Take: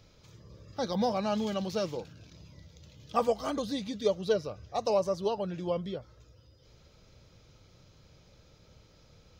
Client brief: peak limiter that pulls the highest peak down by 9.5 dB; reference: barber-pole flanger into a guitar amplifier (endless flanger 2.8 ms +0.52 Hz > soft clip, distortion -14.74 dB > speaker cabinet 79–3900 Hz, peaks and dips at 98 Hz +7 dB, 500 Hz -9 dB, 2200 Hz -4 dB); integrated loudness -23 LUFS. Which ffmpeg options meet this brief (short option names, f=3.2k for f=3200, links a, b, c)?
-filter_complex "[0:a]alimiter=limit=-24dB:level=0:latency=1,asplit=2[a][b];[b]adelay=2.8,afreqshift=0.52[c];[a][c]amix=inputs=2:normalize=1,asoftclip=threshold=-31dB,highpass=79,equalizer=f=98:t=q:w=4:g=7,equalizer=f=500:t=q:w=4:g=-9,equalizer=f=2.2k:t=q:w=4:g=-4,lowpass=f=3.9k:w=0.5412,lowpass=f=3.9k:w=1.3066,volume=19dB"